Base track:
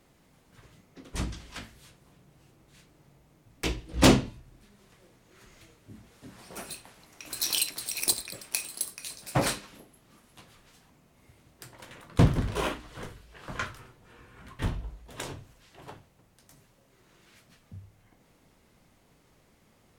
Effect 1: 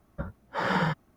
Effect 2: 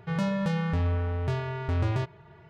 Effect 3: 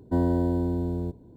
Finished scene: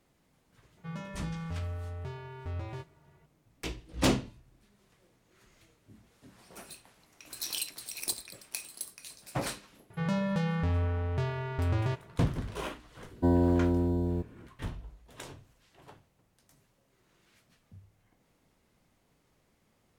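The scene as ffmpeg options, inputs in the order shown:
-filter_complex "[2:a]asplit=2[a][b];[0:a]volume=-7.5dB[c];[a]asplit=2[d][e];[e]adelay=13,volume=-5.5dB[f];[d][f]amix=inputs=2:normalize=0,atrim=end=2.49,asetpts=PTS-STARTPTS,volume=-12.5dB,afade=t=in:d=0.004:c=hsin,afade=t=out:st=2.486:d=0.004:c=hsin,adelay=770[g];[b]atrim=end=2.49,asetpts=PTS-STARTPTS,volume=-2.5dB,afade=t=in:d=0.004:c=hsin,afade=t=out:st=2.486:d=0.004:c=hsin,adelay=9900[h];[3:a]atrim=end=1.36,asetpts=PTS-STARTPTS,volume=-1dB,afade=t=in:d=0.004:c=hsin,afade=t=out:st=1.356:d=0.004:c=hsin,adelay=13110[i];[c][g][h][i]amix=inputs=4:normalize=0"

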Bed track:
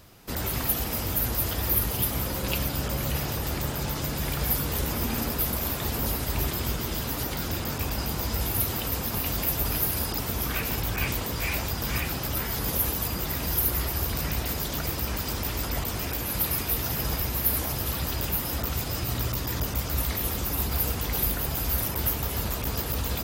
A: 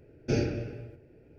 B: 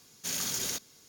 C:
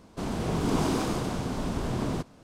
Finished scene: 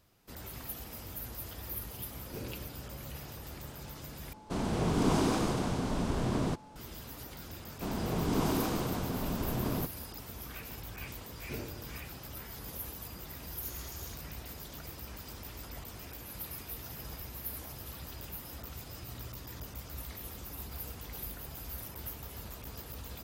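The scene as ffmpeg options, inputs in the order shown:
-filter_complex "[1:a]asplit=2[a][b];[3:a]asplit=2[c][d];[0:a]volume=-15.5dB[e];[c]aeval=exprs='val(0)+0.00251*sin(2*PI*860*n/s)':c=same[f];[e]asplit=2[g][h];[g]atrim=end=4.334[i];[f]atrim=end=2.43,asetpts=PTS-STARTPTS,volume=-1.5dB[j];[h]atrim=start=6.756[k];[a]atrim=end=1.38,asetpts=PTS-STARTPTS,volume=-16dB,afade=t=in:d=0.004:c=hsin,afade=t=out:st=1.376:d=0.004:c=hsin,adelay=2040[l];[d]atrim=end=2.43,asetpts=PTS-STARTPTS,volume=-4dB,afade=t=in:d=0.004:c=hsin,afade=t=out:st=2.426:d=0.004:c=hsin,adelay=7640[m];[b]atrim=end=1.38,asetpts=PTS-STARTPTS,volume=-14.5dB,afade=t=in:d=0.004:c=hsin,afade=t=out:st=1.376:d=0.004:c=hsin,adelay=11210[n];[2:a]atrim=end=1.08,asetpts=PTS-STARTPTS,volume=-17.5dB,afade=t=in:d=0.004:c=hsin,afade=t=out:st=1.076:d=0.004:c=hsin,adelay=13380[o];[i][j]acrossfade=d=0.004:c1=hsin:c2=hsin[p];[p][k]acrossfade=d=0.004:c1=hsin:c2=hsin[q];[q][l][m][n][o]amix=inputs=5:normalize=0"

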